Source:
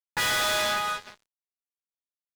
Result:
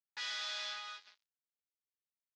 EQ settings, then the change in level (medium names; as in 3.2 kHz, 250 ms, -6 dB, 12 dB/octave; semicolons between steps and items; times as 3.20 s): band-pass filter 5.3 kHz, Q 1.6; distance through air 190 m; -2.0 dB